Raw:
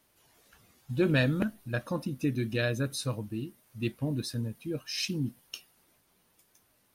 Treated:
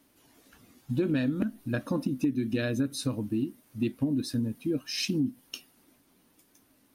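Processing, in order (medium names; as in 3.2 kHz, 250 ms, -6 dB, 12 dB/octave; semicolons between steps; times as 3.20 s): peaking EQ 270 Hz +13.5 dB 0.63 oct; compression 6:1, threshold -26 dBFS, peak gain reduction 11.5 dB; trim +1.5 dB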